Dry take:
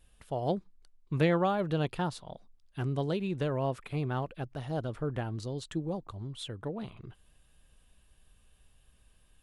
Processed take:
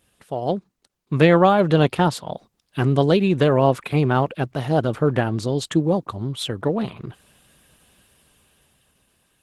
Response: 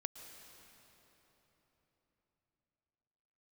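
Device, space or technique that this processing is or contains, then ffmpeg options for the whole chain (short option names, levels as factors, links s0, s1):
video call: -af "highpass=130,dynaudnorm=f=220:g=11:m=2.51,volume=2.37" -ar 48000 -c:a libopus -b:a 16k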